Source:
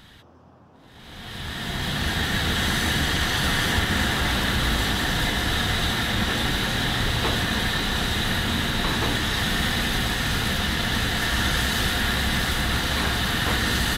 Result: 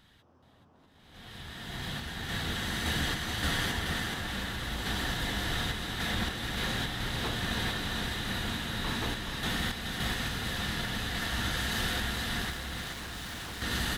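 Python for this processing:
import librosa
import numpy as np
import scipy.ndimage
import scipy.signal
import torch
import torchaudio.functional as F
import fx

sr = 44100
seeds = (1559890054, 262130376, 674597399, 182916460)

p1 = fx.tremolo_random(x, sr, seeds[0], hz=3.5, depth_pct=55)
p2 = fx.overload_stage(p1, sr, gain_db=31.5, at=(12.5, 13.62))
p3 = p2 + fx.echo_single(p2, sr, ms=426, db=-5.5, dry=0)
y = F.gain(torch.from_numpy(p3), -8.0).numpy()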